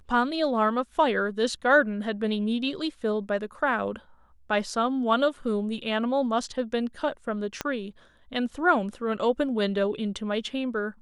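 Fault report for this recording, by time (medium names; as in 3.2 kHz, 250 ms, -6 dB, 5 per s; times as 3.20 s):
7.61 s: pop -13 dBFS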